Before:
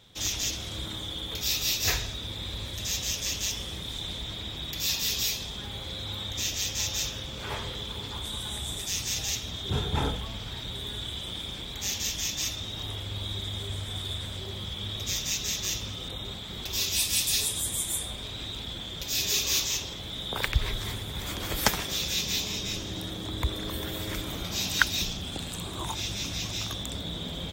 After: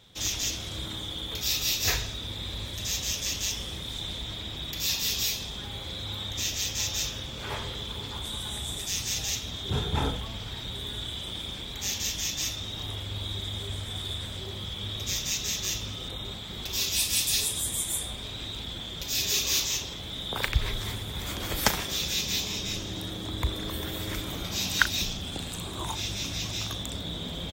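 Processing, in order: doubling 37 ms -14 dB

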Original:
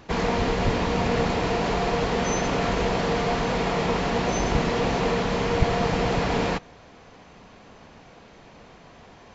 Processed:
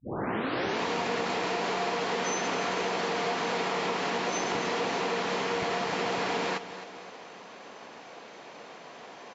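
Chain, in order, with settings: tape start-up on the opening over 0.81 s; high-pass 340 Hz 12 dB/octave; dynamic bell 570 Hz, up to -4 dB, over -42 dBFS, Q 1.7; compression, threshold -31 dBFS, peak gain reduction 8 dB; on a send: feedback delay 263 ms, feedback 50%, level -13.5 dB; on the sum: trim +4 dB

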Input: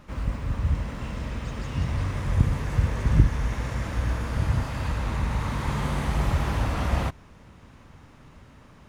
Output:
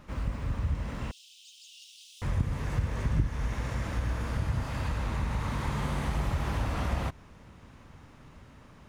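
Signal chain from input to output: 1.11–2.22 s: steep high-pass 2.9 kHz 72 dB/octave; compression 2:1, threshold -26 dBFS, peak gain reduction 9 dB; trim -2 dB

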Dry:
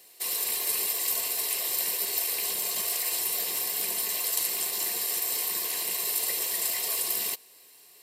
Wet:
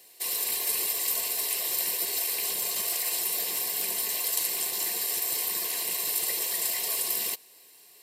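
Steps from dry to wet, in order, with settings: high-pass 90 Hz 24 dB/octave; band-stop 1.3 kHz, Q 8.1; crackling interface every 0.15 s, samples 256, repeat, from 0.37 s

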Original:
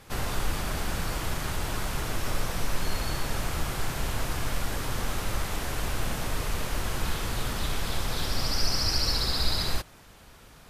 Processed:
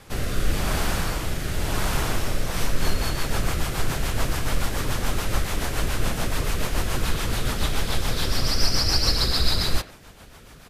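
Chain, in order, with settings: speakerphone echo 90 ms, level -11 dB; rotary cabinet horn 0.9 Hz, later 7 Hz, at 2.25 s; trim +7 dB

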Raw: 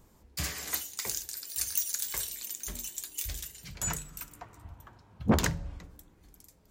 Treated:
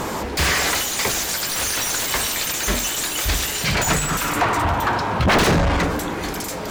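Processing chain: sine folder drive 19 dB, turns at -12.5 dBFS; overdrive pedal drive 29 dB, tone 2.2 kHz, clips at -9.5 dBFS

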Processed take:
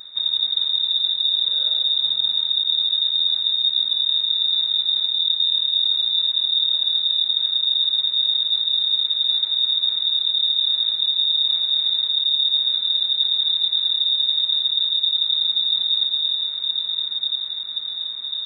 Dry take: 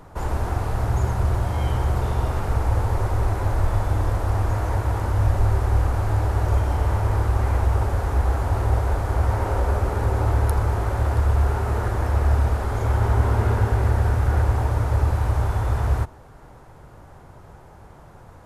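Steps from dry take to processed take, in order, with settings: Chebyshev band-stop 120–2400 Hz, order 3; on a send: echo that smears into a reverb 1261 ms, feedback 59%, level -12.5 dB; on the sum: dynamic bell 2.2 kHz, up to -5 dB, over -58 dBFS, Q 1.1; feedback echo behind a high-pass 114 ms, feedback 69%, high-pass 2 kHz, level -10.5 dB; reverse; compression 6:1, threshold -27 dBFS, peak gain reduction 13 dB; reverse; frequency inversion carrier 3.7 kHz; trim +7.5 dB

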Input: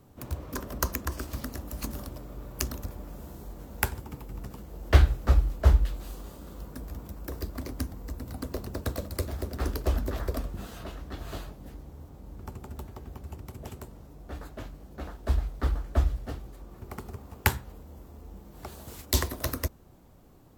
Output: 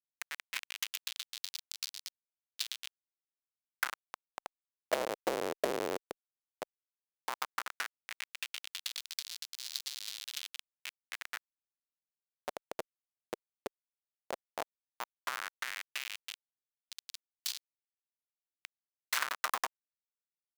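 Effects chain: Schmitt trigger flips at -30 dBFS; LFO high-pass sine 0.13 Hz 440–4300 Hz; trim +3.5 dB

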